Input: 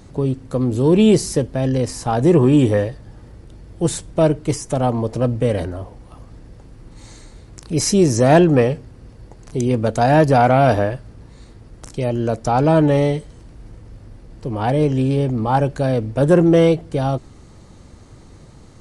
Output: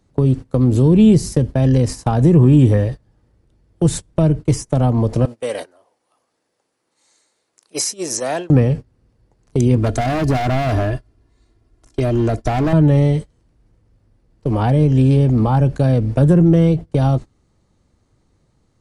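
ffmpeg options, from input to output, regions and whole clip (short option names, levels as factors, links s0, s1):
-filter_complex "[0:a]asettb=1/sr,asplit=3[s0][s1][s2];[s0]atrim=end=5.254[s3];[s1]atrim=start=5.25:end=8.5,asetpts=PTS-STARTPTS,afade=t=in:d=0.004:c=qsin,afade=t=out:st=3.246:d=0.004:c=qsin,highshelf=f=5200:g=8,acompressor=threshold=0.178:ratio=2.5:attack=3.2:release=140:knee=1:detection=peak,highpass=520[s4];[s2]atrim=start=8.496[s5];[s3][s4]acrossfade=d=0.004:c1=hsin:c2=qsin[s6];[s6][s5]acrossfade=d=0.004:c1=qsin:c2=hsin,asettb=1/sr,asplit=3[s7][s8][s9];[s7]atrim=end=9.764[s10];[s8]atrim=start=9.76:end=12.73,asetpts=PTS-STARTPTS,afade=t=in:d=0.004:c=qsin,afade=t=out:st=2.966:d=0.004:c=qsin,aecho=1:1:2.9:0.64,atrim=end_sample=130977,asoftclip=type=hard:threshold=0.168[s11];[s9]atrim=start=12.726[s12];[s10][s11]acrossfade=d=0.004:c1=hsin:c2=qsin[s13];[s13][s12]acrossfade=d=0.004:c1=qsin:c2=hsin,acrossover=split=220[s14][s15];[s15]acompressor=threshold=0.0501:ratio=10[s16];[s14][s16]amix=inputs=2:normalize=0,agate=range=0.0562:threshold=0.0355:ratio=16:detection=peak,volume=2.37"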